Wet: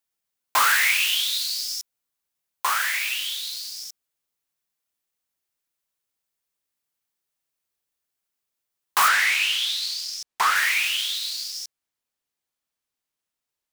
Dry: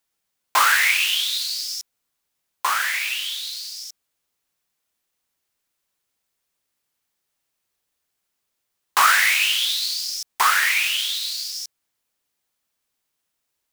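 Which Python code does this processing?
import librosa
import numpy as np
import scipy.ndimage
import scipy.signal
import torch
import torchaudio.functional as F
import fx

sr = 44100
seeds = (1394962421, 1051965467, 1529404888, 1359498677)

y = fx.high_shelf(x, sr, hz=9100.0, db=fx.steps((0.0, 4.0), (9.07, -9.5), (10.55, -2.5)))
y = fx.leveller(y, sr, passes=1)
y = F.gain(torch.from_numpy(y), -5.5).numpy()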